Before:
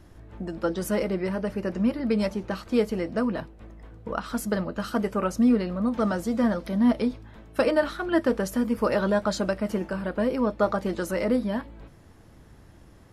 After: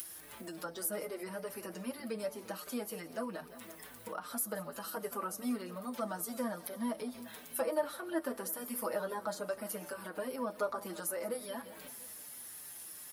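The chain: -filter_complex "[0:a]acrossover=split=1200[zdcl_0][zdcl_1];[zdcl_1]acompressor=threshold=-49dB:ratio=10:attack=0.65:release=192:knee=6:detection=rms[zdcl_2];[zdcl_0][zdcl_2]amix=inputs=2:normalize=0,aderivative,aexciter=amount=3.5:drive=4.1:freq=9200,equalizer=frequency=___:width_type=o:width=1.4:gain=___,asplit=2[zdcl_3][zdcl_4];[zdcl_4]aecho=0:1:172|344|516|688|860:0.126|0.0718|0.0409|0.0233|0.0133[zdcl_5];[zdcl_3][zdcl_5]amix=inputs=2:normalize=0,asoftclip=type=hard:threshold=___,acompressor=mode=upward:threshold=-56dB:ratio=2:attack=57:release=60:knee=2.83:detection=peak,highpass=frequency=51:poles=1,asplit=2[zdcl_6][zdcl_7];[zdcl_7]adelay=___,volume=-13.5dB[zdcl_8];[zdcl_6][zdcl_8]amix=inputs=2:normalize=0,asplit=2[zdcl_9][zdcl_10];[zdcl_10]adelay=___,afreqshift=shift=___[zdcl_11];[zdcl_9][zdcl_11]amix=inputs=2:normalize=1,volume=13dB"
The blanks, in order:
140, 2.5, -33dB, 12, 5.5, -2.5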